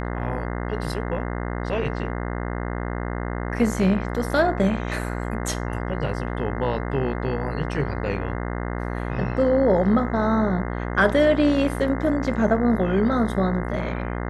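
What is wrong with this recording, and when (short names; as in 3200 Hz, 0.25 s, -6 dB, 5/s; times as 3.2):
buzz 60 Hz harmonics 35 -28 dBFS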